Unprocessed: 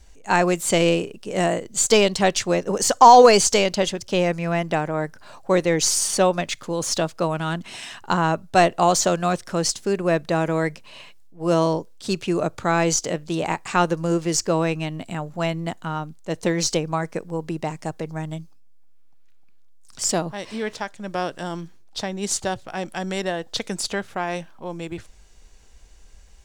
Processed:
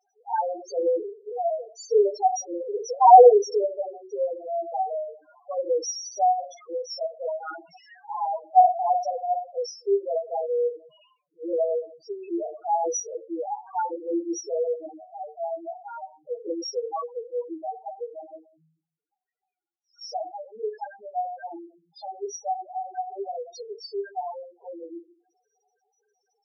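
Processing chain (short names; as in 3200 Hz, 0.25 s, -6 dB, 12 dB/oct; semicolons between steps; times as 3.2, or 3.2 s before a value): speaker cabinet 390–6200 Hz, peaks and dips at 440 Hz +6 dB, 750 Hz +9 dB, 1100 Hz +4 dB, 1600 Hz +5 dB, 5600 Hz +9 dB; shoebox room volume 41 m³, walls mixed, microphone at 0.6 m; loudest bins only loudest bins 2; gain -7.5 dB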